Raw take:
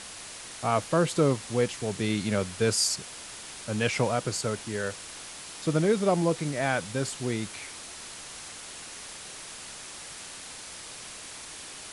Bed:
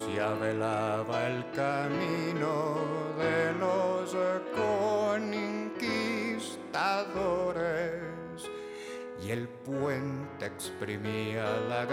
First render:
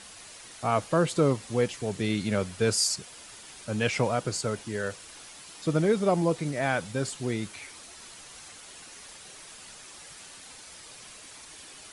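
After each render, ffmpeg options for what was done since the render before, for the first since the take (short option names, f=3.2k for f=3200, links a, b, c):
-af "afftdn=nr=7:nf=-43"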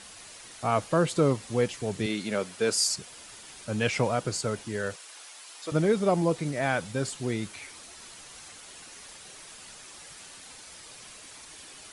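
-filter_complex "[0:a]asettb=1/sr,asplit=3[a][b][c];[a]atrim=end=2.064[d];[b]atrim=start=2.06:end=2.76,asetpts=PTS-STARTPTS,afade=t=in:d=0.004:c=qsin,afade=t=out:st=0.696:d=0.004:c=qsin,highpass=240[e];[c]atrim=start=2.756[f];[d][e]acrossfade=d=0.004:c1=hsin:c2=qsin[g];[g][f]acrossfade=d=0.004:c1=qsin:c2=hsin,asettb=1/sr,asplit=3[h][i][j];[h]atrim=end=4.964[k];[i]atrim=start=4.96:end=5.72,asetpts=PTS-STARTPTS,afade=t=in:d=0.004:c=qsin,afade=t=out:st=0.756:d=0.004:c=qsin,highpass=570[l];[j]atrim=start=5.716[m];[k][l]acrossfade=d=0.004:c1=hsin:c2=qsin[n];[n][m]acrossfade=d=0.004:c1=qsin:c2=hsin"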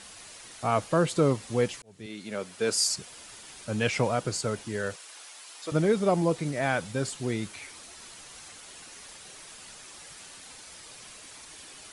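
-filter_complex "[0:a]asplit=2[a][b];[a]atrim=end=1.82,asetpts=PTS-STARTPTS,afade=t=out:st=1.816:d=0.004:c=hsin[c];[b]atrim=start=1.82,asetpts=PTS-STARTPTS,afade=t=in:d=0.97[d];[c][d]concat=n=2:v=0:a=1"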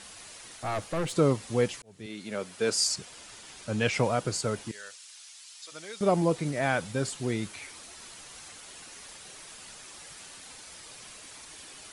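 -filter_complex "[0:a]asettb=1/sr,asplit=3[a][b][c];[a]atrim=end=0.564[d];[b]atrim=start=0.56:end=1.13,asetpts=PTS-STARTPTS,afade=t=in:d=0.004:c=qsin,afade=t=out:st=0.566:d=0.004:c=qsin,aeval=exprs='(tanh(20*val(0)+0.35)-tanh(0.35))/20':c=same[e];[c]atrim=start=1.126[f];[d][e]acrossfade=d=0.004:c1=hsin:c2=qsin[g];[g][f]acrossfade=d=0.004:c1=qsin:c2=hsin,asettb=1/sr,asplit=3[h][i][j];[h]atrim=end=2.704[k];[i]atrim=start=2.7:end=3.94,asetpts=PTS-STARTPTS,afade=t=in:d=0.004:c=qsin,afade=t=out:st=1.236:d=0.004:c=qsin,lowpass=9.5k[l];[j]atrim=start=3.936[m];[k][l]acrossfade=d=0.004:c1=hsin:c2=qsin[n];[n][m]acrossfade=d=0.004:c1=qsin:c2=hsin,asettb=1/sr,asplit=3[o][p][q];[o]atrim=end=4.714[r];[p]atrim=start=4.71:end=6.01,asetpts=PTS-STARTPTS,afade=t=in:d=0.004:c=qsin,afade=t=out:st=1.296:d=0.004:c=qsin,bandpass=f=5.7k:t=q:w=0.77[s];[q]atrim=start=6.006[t];[r][s]acrossfade=d=0.004:c1=hsin:c2=qsin[u];[u][t]acrossfade=d=0.004:c1=qsin:c2=hsin"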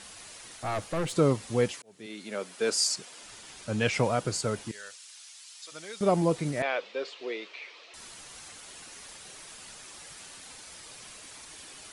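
-filter_complex "[0:a]asettb=1/sr,asplit=3[a][b][c];[a]atrim=end=1.714[d];[b]atrim=start=1.71:end=3.23,asetpts=PTS-STARTPTS,afade=t=in:d=0.004:c=qsin,afade=t=out:st=1.516:d=0.004:c=qsin,highpass=220[e];[c]atrim=start=3.226[f];[d][e]acrossfade=d=0.004:c1=hsin:c2=qsin[g];[g][f]acrossfade=d=0.004:c1=qsin:c2=hsin,asettb=1/sr,asplit=3[h][i][j];[h]atrim=end=6.624[k];[i]atrim=start=6.62:end=7.94,asetpts=PTS-STARTPTS,afade=t=in:d=0.004:c=qsin,afade=t=out:st=1.316:d=0.004:c=qsin,highpass=f=410:w=0.5412,highpass=f=410:w=1.3066,equalizer=f=460:t=q:w=4:g=4,equalizer=f=810:t=q:w=4:g=-6,equalizer=f=1.5k:t=q:w=4:g=-6,equalizer=f=2.6k:t=q:w=4:g=4,lowpass=f=4.3k:w=0.5412,lowpass=f=4.3k:w=1.3066[l];[j]atrim=start=7.936[m];[k][l]acrossfade=d=0.004:c1=hsin:c2=qsin[n];[n][m]acrossfade=d=0.004:c1=qsin:c2=hsin"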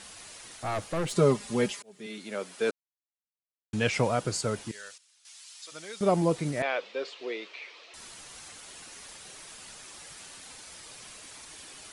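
-filter_complex "[0:a]asettb=1/sr,asplit=3[a][b][c];[a]atrim=end=1.104[d];[b]atrim=start=1.1:end=2.18,asetpts=PTS-STARTPTS,afade=t=in:d=0.004:c=qsin,afade=t=out:st=1.076:d=0.004:c=qsin,aecho=1:1:4.9:0.69,atrim=end_sample=47628[e];[c]atrim=start=2.176[f];[d][e]acrossfade=d=0.004:c1=hsin:c2=qsin[g];[g][f]acrossfade=d=0.004:c1=qsin:c2=hsin,asplit=5[h][i][j][k][l];[h]atrim=end=2.71,asetpts=PTS-STARTPTS,afade=t=out:st=2.706:d=0.004:c=hsin[m];[i]atrim=start=2.71:end=3.73,asetpts=PTS-STARTPTS,volume=0[n];[j]atrim=start=3.73:end=4.98,asetpts=PTS-STARTPTS,afade=t=in:d=0.004:c=hsin,afade=t=out:st=0.98:d=0.27:c=log:silence=0.177828[o];[k]atrim=start=4.98:end=5.25,asetpts=PTS-STARTPTS,volume=-15dB[p];[l]atrim=start=5.25,asetpts=PTS-STARTPTS,afade=t=in:d=0.27:c=log:silence=0.177828[q];[m][n][o][p][q]concat=n=5:v=0:a=1"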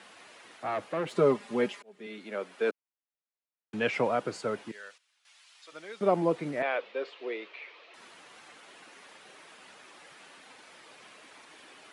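-filter_complex "[0:a]highpass=87,acrossover=split=200 3200:gain=0.158 1 0.158[a][b][c];[a][b][c]amix=inputs=3:normalize=0"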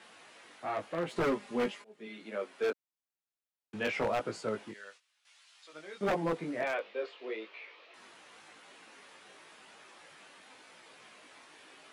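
-af "flanger=delay=17.5:depth=2.9:speed=0.92,aeval=exprs='0.0631*(abs(mod(val(0)/0.0631+3,4)-2)-1)':c=same"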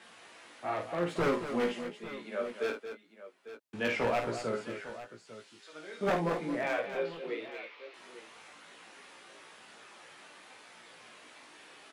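-filter_complex "[0:a]asplit=2[a][b];[b]adelay=17,volume=-8dB[c];[a][c]amix=inputs=2:normalize=0,aecho=1:1:52|226|849:0.447|0.316|0.188"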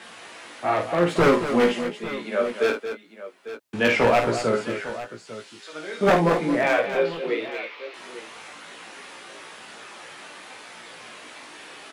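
-af "volume=11.5dB"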